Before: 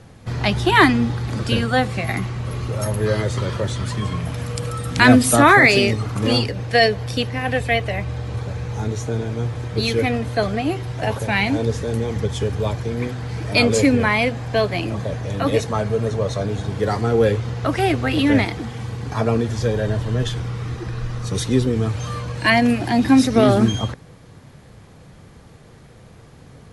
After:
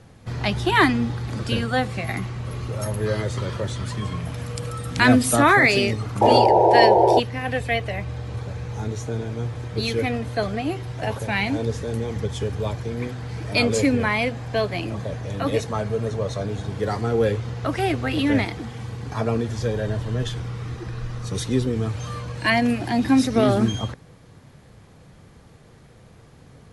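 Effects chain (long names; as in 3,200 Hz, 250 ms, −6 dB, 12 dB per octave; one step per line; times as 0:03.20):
sound drawn into the spectrogram noise, 0:06.21–0:07.20, 320–970 Hz −11 dBFS
level −4 dB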